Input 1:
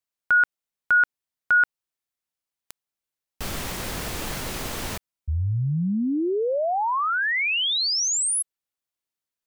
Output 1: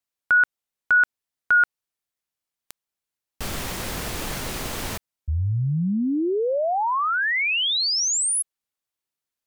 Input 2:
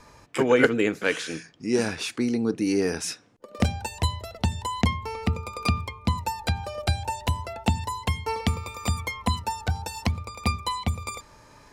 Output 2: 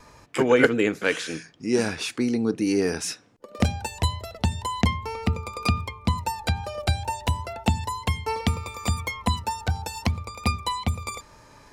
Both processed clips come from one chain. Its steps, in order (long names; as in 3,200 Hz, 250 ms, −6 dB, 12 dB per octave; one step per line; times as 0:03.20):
tape wow and flutter 17 cents
level +1 dB